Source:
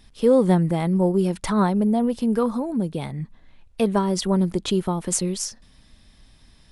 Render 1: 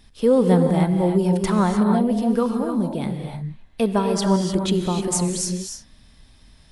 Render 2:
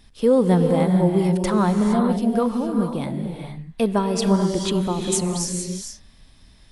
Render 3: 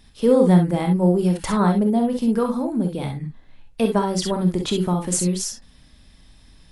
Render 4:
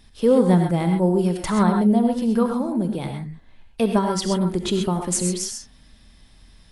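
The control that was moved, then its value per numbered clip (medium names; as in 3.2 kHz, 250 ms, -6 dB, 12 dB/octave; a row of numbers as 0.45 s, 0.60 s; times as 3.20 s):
gated-style reverb, gate: 330 ms, 490 ms, 80 ms, 150 ms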